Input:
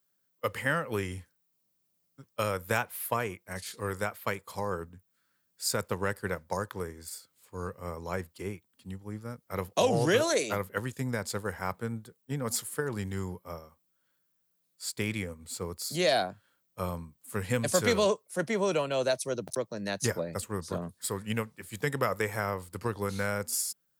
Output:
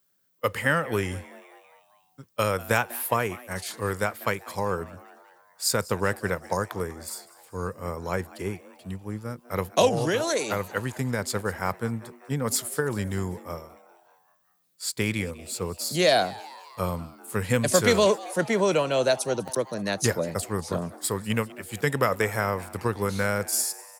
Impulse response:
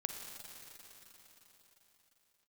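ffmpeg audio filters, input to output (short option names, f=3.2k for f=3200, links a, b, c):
-filter_complex "[0:a]asplit=3[a][b][c];[a]afade=t=out:st=9.88:d=0.02[d];[b]acompressor=threshold=-28dB:ratio=4,afade=t=in:st=9.88:d=0.02,afade=t=out:st=11.17:d=0.02[e];[c]afade=t=in:st=11.17:d=0.02[f];[d][e][f]amix=inputs=3:normalize=0,asplit=6[g][h][i][j][k][l];[h]adelay=195,afreqshift=130,volume=-20dB[m];[i]adelay=390,afreqshift=260,volume=-24.6dB[n];[j]adelay=585,afreqshift=390,volume=-29.2dB[o];[k]adelay=780,afreqshift=520,volume=-33.7dB[p];[l]adelay=975,afreqshift=650,volume=-38.3dB[q];[g][m][n][o][p][q]amix=inputs=6:normalize=0,volume=5.5dB"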